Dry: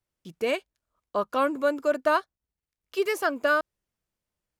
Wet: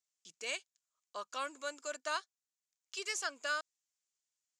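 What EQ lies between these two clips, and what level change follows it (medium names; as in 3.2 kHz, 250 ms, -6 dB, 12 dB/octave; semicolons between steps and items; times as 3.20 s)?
band-pass filter 7.1 kHz, Q 3.7; distance through air 81 m; +15.0 dB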